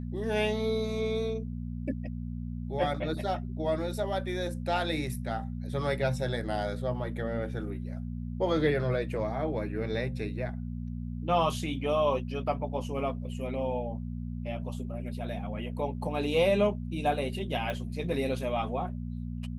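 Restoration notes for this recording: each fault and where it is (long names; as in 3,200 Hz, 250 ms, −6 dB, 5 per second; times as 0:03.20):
mains hum 60 Hz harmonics 4 −36 dBFS
0:17.70: click −22 dBFS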